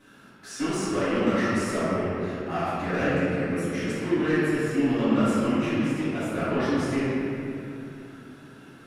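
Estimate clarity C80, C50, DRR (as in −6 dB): −2.0 dB, −4.0 dB, −14.0 dB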